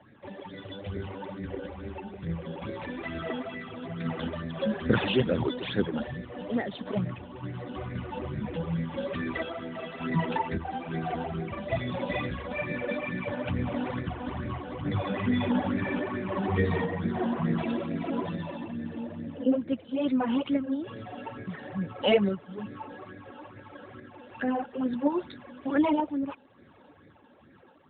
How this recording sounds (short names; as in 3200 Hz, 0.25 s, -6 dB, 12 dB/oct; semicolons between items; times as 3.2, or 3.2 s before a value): random-step tremolo; phasing stages 12, 2.3 Hz, lowest notch 110–1000 Hz; AMR-NB